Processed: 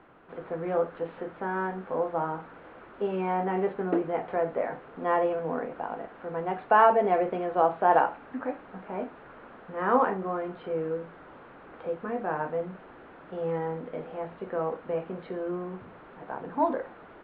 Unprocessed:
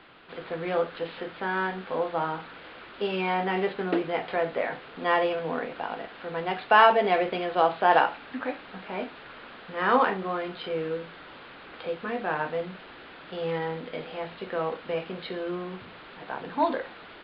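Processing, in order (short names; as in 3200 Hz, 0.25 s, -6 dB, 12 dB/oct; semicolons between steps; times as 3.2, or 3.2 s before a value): LPF 1200 Hz 12 dB/oct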